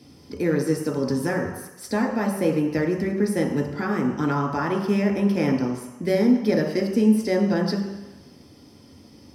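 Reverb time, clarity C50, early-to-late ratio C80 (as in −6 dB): 1.1 s, 5.0 dB, 7.5 dB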